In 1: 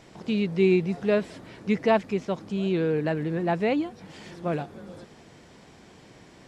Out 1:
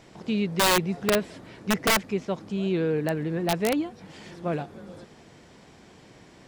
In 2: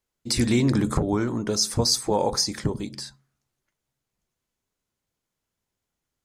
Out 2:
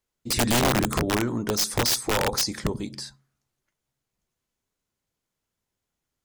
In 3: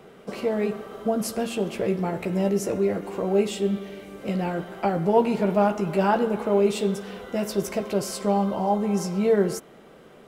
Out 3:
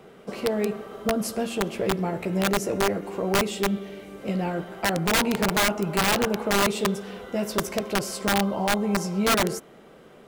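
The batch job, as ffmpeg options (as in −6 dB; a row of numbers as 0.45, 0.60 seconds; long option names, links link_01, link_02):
-af "aeval=exprs='0.447*(cos(1*acos(clip(val(0)/0.447,-1,1)))-cos(1*PI/2))+0.00708*(cos(3*acos(clip(val(0)/0.447,-1,1)))-cos(3*PI/2))':channel_layout=same,aeval=exprs='(mod(5.96*val(0)+1,2)-1)/5.96':channel_layout=same"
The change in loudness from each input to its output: 0.0, −0.5, −0.5 LU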